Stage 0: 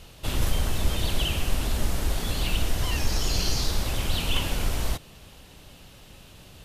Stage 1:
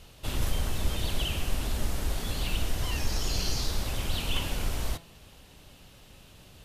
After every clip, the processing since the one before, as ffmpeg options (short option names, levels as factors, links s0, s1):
-af "bandreject=f=168.1:t=h:w=4,bandreject=f=336.2:t=h:w=4,bandreject=f=504.3:t=h:w=4,bandreject=f=672.4:t=h:w=4,bandreject=f=840.5:t=h:w=4,bandreject=f=1008.6:t=h:w=4,bandreject=f=1176.7:t=h:w=4,bandreject=f=1344.8:t=h:w=4,bandreject=f=1512.9:t=h:w=4,bandreject=f=1681:t=h:w=4,bandreject=f=1849.1:t=h:w=4,bandreject=f=2017.2:t=h:w=4,bandreject=f=2185.3:t=h:w=4,bandreject=f=2353.4:t=h:w=4,bandreject=f=2521.5:t=h:w=4,bandreject=f=2689.6:t=h:w=4,bandreject=f=2857.7:t=h:w=4,bandreject=f=3025.8:t=h:w=4,bandreject=f=3193.9:t=h:w=4,bandreject=f=3362:t=h:w=4,bandreject=f=3530.1:t=h:w=4,bandreject=f=3698.2:t=h:w=4,bandreject=f=3866.3:t=h:w=4,bandreject=f=4034.4:t=h:w=4,bandreject=f=4202.5:t=h:w=4,bandreject=f=4370.6:t=h:w=4,bandreject=f=4538.7:t=h:w=4,volume=0.631"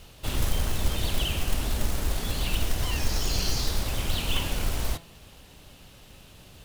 -af "acrusher=bits=4:mode=log:mix=0:aa=0.000001,volume=1.33"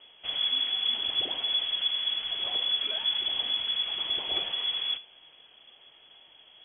-af "lowpass=f=2900:t=q:w=0.5098,lowpass=f=2900:t=q:w=0.6013,lowpass=f=2900:t=q:w=0.9,lowpass=f=2900:t=q:w=2.563,afreqshift=-3400,volume=0.562"